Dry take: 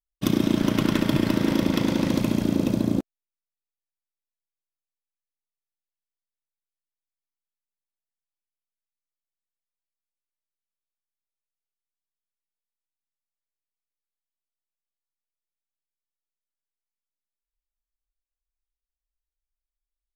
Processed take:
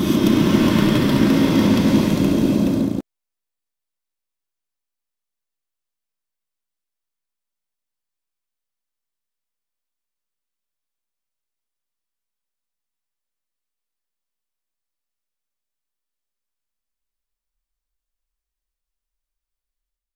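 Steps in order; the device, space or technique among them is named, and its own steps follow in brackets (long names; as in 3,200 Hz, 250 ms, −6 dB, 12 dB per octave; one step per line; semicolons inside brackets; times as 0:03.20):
reverse reverb (reversed playback; convolution reverb RT60 2.0 s, pre-delay 114 ms, DRR −5 dB; reversed playback)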